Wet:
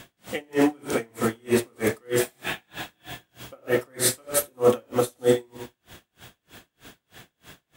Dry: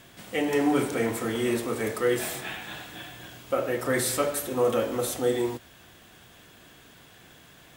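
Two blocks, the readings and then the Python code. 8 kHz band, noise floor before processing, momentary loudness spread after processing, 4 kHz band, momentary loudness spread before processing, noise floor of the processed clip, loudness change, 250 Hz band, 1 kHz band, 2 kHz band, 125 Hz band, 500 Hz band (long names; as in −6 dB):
+4.0 dB, −53 dBFS, 19 LU, +2.0 dB, 14 LU, −79 dBFS, +2.0 dB, +1.0 dB, −1.0 dB, +0.5 dB, +1.5 dB, +1.5 dB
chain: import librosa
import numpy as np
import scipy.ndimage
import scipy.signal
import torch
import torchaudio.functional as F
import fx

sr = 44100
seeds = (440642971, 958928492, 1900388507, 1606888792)

p1 = x + fx.echo_feedback(x, sr, ms=88, feedback_pct=37, wet_db=-11.0, dry=0)
p2 = p1 * 10.0 ** (-38 * (0.5 - 0.5 * np.cos(2.0 * np.pi * 3.2 * np.arange(len(p1)) / sr)) / 20.0)
y = F.gain(torch.from_numpy(p2), 8.0).numpy()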